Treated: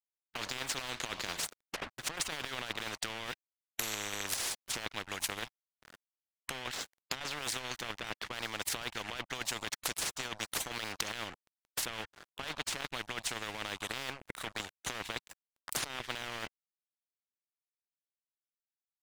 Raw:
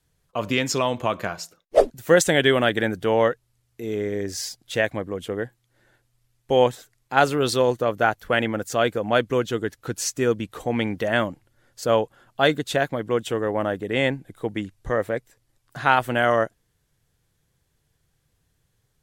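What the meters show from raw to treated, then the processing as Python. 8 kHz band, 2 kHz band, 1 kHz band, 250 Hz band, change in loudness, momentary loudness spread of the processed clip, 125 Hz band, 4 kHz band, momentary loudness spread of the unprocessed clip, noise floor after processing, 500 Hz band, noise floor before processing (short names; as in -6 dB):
-4.5 dB, -12.5 dB, -17.5 dB, -22.0 dB, -14.5 dB, 7 LU, -20.0 dB, -6.5 dB, 11 LU, under -85 dBFS, -25.5 dB, -71 dBFS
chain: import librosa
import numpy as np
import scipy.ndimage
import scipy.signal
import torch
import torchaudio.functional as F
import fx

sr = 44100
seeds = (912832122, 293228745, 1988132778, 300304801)

y = fx.highpass(x, sr, hz=1400.0, slope=6)
y = fx.transient(y, sr, attack_db=9, sustain_db=-4)
y = fx.env_lowpass_down(y, sr, base_hz=2200.0, full_db=-19.0)
y = fx.high_shelf(y, sr, hz=7600.0, db=4.5)
y = fx.over_compress(y, sr, threshold_db=-33.0, ratio=-1.0)
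y = np.sign(y) * np.maximum(np.abs(y) - 10.0 ** (-50.5 / 20.0), 0.0)
y = fx.high_shelf(y, sr, hz=3500.0, db=-11.0)
y = fx.spectral_comp(y, sr, ratio=10.0)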